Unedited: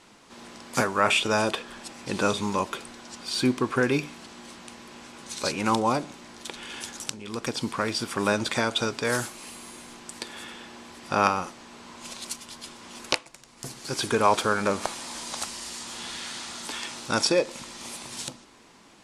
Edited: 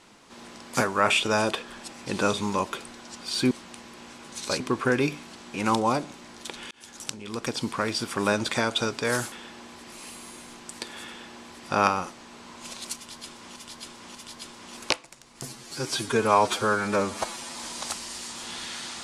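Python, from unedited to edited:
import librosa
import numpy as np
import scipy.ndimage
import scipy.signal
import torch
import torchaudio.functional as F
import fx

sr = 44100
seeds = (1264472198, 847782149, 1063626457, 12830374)

y = fx.edit(x, sr, fx.move(start_s=3.51, length_s=0.94, to_s=5.54),
    fx.fade_in_span(start_s=6.71, length_s=0.43),
    fx.duplicate(start_s=10.48, length_s=0.6, to_s=9.32),
    fx.repeat(start_s=12.37, length_s=0.59, count=3),
    fx.stretch_span(start_s=13.67, length_s=1.41, factor=1.5), tone=tone)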